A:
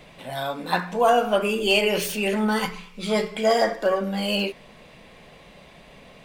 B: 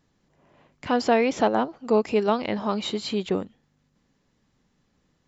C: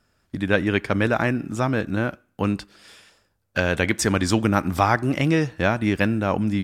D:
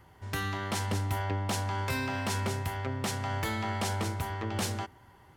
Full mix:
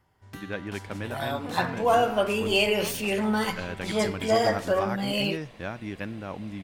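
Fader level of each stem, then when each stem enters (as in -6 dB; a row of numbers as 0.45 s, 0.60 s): -3.0 dB, -19.5 dB, -14.0 dB, -11.0 dB; 0.85 s, 0.55 s, 0.00 s, 0.00 s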